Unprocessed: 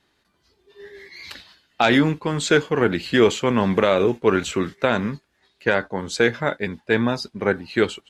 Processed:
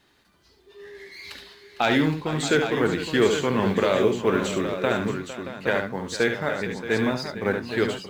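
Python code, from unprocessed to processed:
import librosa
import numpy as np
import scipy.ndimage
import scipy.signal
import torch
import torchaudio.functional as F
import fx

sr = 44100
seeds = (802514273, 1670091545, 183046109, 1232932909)

y = fx.law_mismatch(x, sr, coded='mu')
y = fx.echo_multitap(y, sr, ms=(71, 456, 626, 817), db=(-7.0, -14.0, -13.0, -8.5))
y = y * 10.0 ** (-5.0 / 20.0)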